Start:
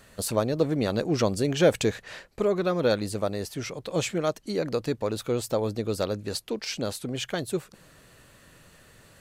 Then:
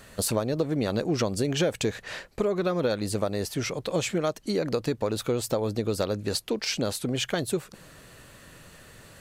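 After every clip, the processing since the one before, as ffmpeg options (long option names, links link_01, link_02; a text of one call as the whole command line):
ffmpeg -i in.wav -af "acompressor=threshold=-27dB:ratio=6,volume=4.5dB" out.wav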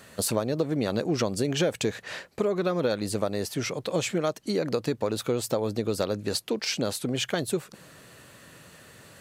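ffmpeg -i in.wav -af "highpass=100" out.wav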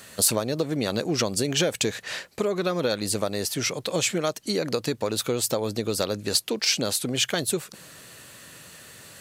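ffmpeg -i in.wav -af "highshelf=frequency=2300:gain=9" out.wav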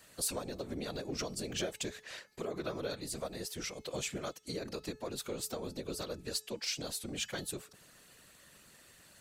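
ffmpeg -i in.wav -af "afftfilt=real='hypot(re,im)*cos(2*PI*random(0))':imag='hypot(re,im)*sin(2*PI*random(1))':win_size=512:overlap=0.75,bandreject=frequency=430.6:width_type=h:width=4,bandreject=frequency=861.2:width_type=h:width=4,bandreject=frequency=1291.8:width_type=h:width=4,bandreject=frequency=1722.4:width_type=h:width=4,bandreject=frequency=2153:width_type=h:width=4,bandreject=frequency=2583.6:width_type=h:width=4,bandreject=frequency=3014.2:width_type=h:width=4,bandreject=frequency=3444.8:width_type=h:width=4,bandreject=frequency=3875.4:width_type=h:width=4,bandreject=frequency=4306:width_type=h:width=4,bandreject=frequency=4736.6:width_type=h:width=4,bandreject=frequency=5167.2:width_type=h:width=4,bandreject=frequency=5597.8:width_type=h:width=4,bandreject=frequency=6028.4:width_type=h:width=4,bandreject=frequency=6459:width_type=h:width=4,bandreject=frequency=6889.6:width_type=h:width=4,bandreject=frequency=7320.2:width_type=h:width=4,bandreject=frequency=7750.8:width_type=h:width=4,bandreject=frequency=8181.4:width_type=h:width=4,bandreject=frequency=8612:width_type=h:width=4,volume=-7.5dB" out.wav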